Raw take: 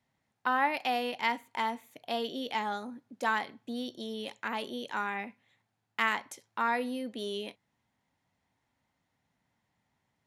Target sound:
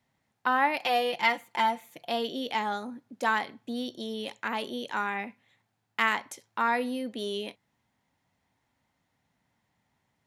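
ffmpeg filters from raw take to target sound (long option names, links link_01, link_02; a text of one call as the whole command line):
ffmpeg -i in.wav -filter_complex "[0:a]asettb=1/sr,asplit=3[link_01][link_02][link_03];[link_01]atrim=end=0.824[link_04];[link_02]atrim=start=0.82:end=2.1,asetpts=PTS-STARTPTS,afade=type=in:duration=0.004:curve=qsin,afade=type=out:start_time=1.276:duration=0.004:curve=qsin,aecho=1:1:5.8:0.78,atrim=end_sample=56448[link_05];[link_03]atrim=start=2.096[link_06];[link_04][link_05]acrossfade=duration=0.004:curve1=hsin:curve2=qsin[link_07];[link_07][link_06]acrossfade=duration=0.004:curve1=qsin:curve2=hsin,volume=3dB" out.wav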